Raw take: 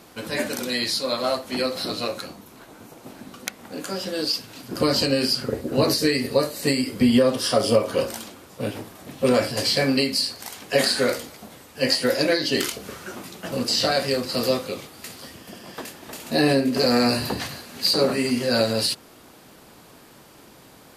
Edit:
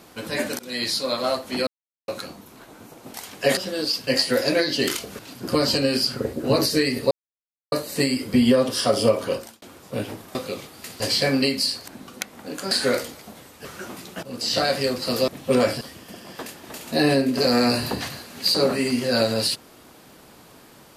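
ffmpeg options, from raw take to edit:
ffmpeg -i in.wav -filter_complex "[0:a]asplit=18[link_01][link_02][link_03][link_04][link_05][link_06][link_07][link_08][link_09][link_10][link_11][link_12][link_13][link_14][link_15][link_16][link_17][link_18];[link_01]atrim=end=0.59,asetpts=PTS-STARTPTS,afade=type=out:start_time=0.586:duration=0.004:curve=hsin:silence=0.0841395[link_19];[link_02]atrim=start=0.59:end=1.67,asetpts=PTS-STARTPTS,afade=type=in:duration=0.26:silence=0.0841395,afade=type=out:start_time=1.076:duration=0.004:curve=hsin[link_20];[link_03]atrim=start=1.67:end=2.08,asetpts=PTS-STARTPTS,volume=0[link_21];[link_04]atrim=start=2.08:end=3.142,asetpts=PTS-STARTPTS,afade=type=in:duration=0.004:curve=hsin[link_22];[link_05]atrim=start=10.428:end=10.862[link_23];[link_06]atrim=start=3.968:end=4.472[link_24];[link_07]atrim=start=11.798:end=12.922[link_25];[link_08]atrim=start=4.468:end=6.39,asetpts=PTS-STARTPTS,afade=type=out:start_time=1.918:duration=0.004:curve=hsin,apad=pad_dur=0.61[link_26];[link_09]atrim=start=6.39:end=8.29,asetpts=PTS-STARTPTS,afade=type=in:duration=0.004:curve=hsin,afade=type=out:start_time=1.49:duration=0.41[link_27];[link_10]atrim=start=8.29:end=9.022,asetpts=PTS-STARTPTS,afade=type=in:duration=0.004:curve=hsin[link_28];[link_11]atrim=start=14.548:end=15.202[link_29];[link_12]atrim=start=9.548:end=10.432[link_30];[link_13]atrim=start=3.138:end=3.972[link_31];[link_14]atrim=start=10.858:end=11.802[link_32];[link_15]atrim=start=12.918:end=13.5,asetpts=PTS-STARTPTS,afade=type=out:start_time=0.578:duration=0.004:curve=hsin:silence=0.149624[link_33];[link_16]atrim=start=13.5:end=14.552,asetpts=PTS-STARTPTS,afade=type=in:duration=0.37:silence=0.149624[link_34];[link_17]atrim=start=9.018:end=9.552[link_35];[link_18]atrim=start=15.198[link_36];[link_19][link_20][link_21][link_22]concat=n=4:v=0:a=1[link_37];[link_37][link_23]acrossfade=duration=0.004:curve1=hsin:curve2=hsin[link_38];[link_38][link_24]acrossfade=duration=0.004:curve1=hsin:curve2=hsin[link_39];[link_39][link_25]acrossfade=duration=0.004:curve1=hsin:curve2=hsin[link_40];[link_26][link_27][link_28]concat=n=3:v=0:a=1[link_41];[link_40][link_41]acrossfade=duration=0.004:curve1=hsin:curve2=hsin[link_42];[link_42][link_29]acrossfade=duration=0.004:curve1=hsin:curve2=hsin[link_43];[link_43][link_30]acrossfade=duration=0.004:curve1=hsin:curve2=hsin[link_44];[link_44][link_31]acrossfade=duration=0.004:curve1=hsin:curve2=hsin[link_45];[link_45][link_32]acrossfade=duration=0.004:curve1=hsin:curve2=hsin[link_46];[link_33][link_34]concat=n=2:v=0:a=1[link_47];[link_46][link_47]acrossfade=duration=0.004:curve1=hsin:curve2=hsin[link_48];[link_48][link_35]acrossfade=duration=0.004:curve1=hsin:curve2=hsin[link_49];[link_49][link_36]acrossfade=duration=0.004:curve1=hsin:curve2=hsin" out.wav

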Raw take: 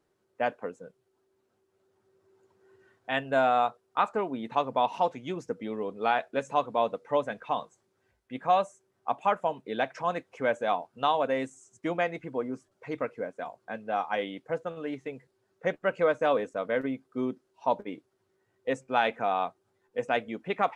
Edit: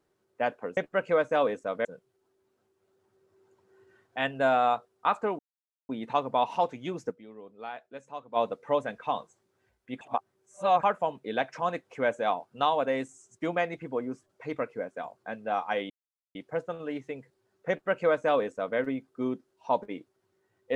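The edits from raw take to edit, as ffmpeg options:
ffmpeg -i in.wav -filter_complex "[0:a]asplit=9[link_01][link_02][link_03][link_04][link_05][link_06][link_07][link_08][link_09];[link_01]atrim=end=0.772[link_10];[link_02]atrim=start=15.668:end=16.752[link_11];[link_03]atrim=start=0.768:end=4.31,asetpts=PTS-STARTPTS,afade=type=out:start_time=3.538:duration=0.004:curve=hsin,apad=pad_dur=0.5[link_12];[link_04]atrim=start=4.31:end=5.74,asetpts=PTS-STARTPTS,afade=type=in:duration=0.004:curve=hsin,afade=type=out:start_time=1.21:duration=0.22:curve=exp:silence=0.211349[link_13];[link_05]atrim=start=5.74:end=6.57,asetpts=PTS-STARTPTS,volume=-13.5dB[link_14];[link_06]atrim=start=6.57:end=8.432,asetpts=PTS-STARTPTS,afade=type=in:duration=0.22:curve=exp:silence=0.211349[link_15];[link_07]atrim=start=8.428:end=9.252,asetpts=PTS-STARTPTS,areverse[link_16];[link_08]atrim=start=9.248:end=14.32,asetpts=PTS-STARTPTS,afade=type=out:start_time=5.068:duration=0.004:curve=hsin,apad=pad_dur=0.45[link_17];[link_09]atrim=start=14.32,asetpts=PTS-STARTPTS,afade=type=in:duration=0.004:curve=hsin[link_18];[link_10][link_11]acrossfade=duration=0.004:curve1=hsin:curve2=hsin[link_19];[link_12][link_13][link_14][link_15]concat=n=4:v=0:a=1[link_20];[link_19][link_20]acrossfade=duration=0.004:curve1=hsin:curve2=hsin[link_21];[link_21][link_16]acrossfade=duration=0.004:curve1=hsin:curve2=hsin[link_22];[link_17][link_18]concat=n=2:v=0:a=1[link_23];[link_22][link_23]acrossfade=duration=0.004:curve1=hsin:curve2=hsin" out.wav

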